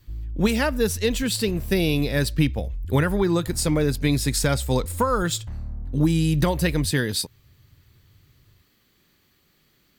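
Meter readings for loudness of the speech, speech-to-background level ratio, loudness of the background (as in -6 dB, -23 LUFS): -23.5 LUFS, 11.5 dB, -35.0 LUFS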